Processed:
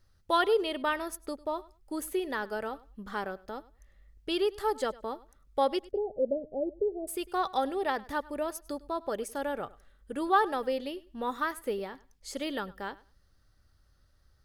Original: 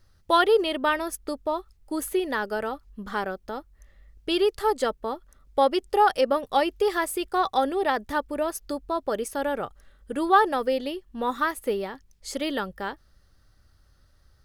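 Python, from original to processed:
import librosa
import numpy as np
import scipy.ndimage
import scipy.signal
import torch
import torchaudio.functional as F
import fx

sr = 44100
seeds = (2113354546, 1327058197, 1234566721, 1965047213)

y = fx.steep_lowpass(x, sr, hz=670.0, slope=72, at=(5.9, 7.07), fade=0.02)
y = fx.echo_feedback(y, sr, ms=101, feedback_pct=18, wet_db=-21)
y = y * 10.0 ** (-6.0 / 20.0)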